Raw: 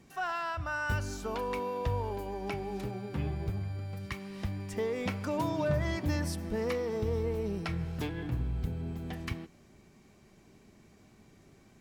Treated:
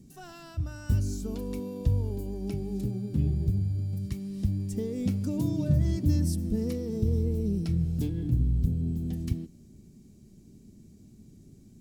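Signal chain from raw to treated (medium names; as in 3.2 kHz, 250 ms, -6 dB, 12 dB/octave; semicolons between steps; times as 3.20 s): FFT filter 250 Hz 0 dB, 980 Hz -26 dB, 2.1 kHz -23 dB, 4 kHz -12 dB, 8.1 kHz -4 dB; trim +8 dB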